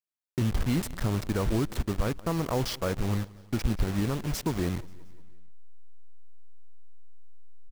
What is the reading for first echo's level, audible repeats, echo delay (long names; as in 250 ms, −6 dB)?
−22.0 dB, 3, 177 ms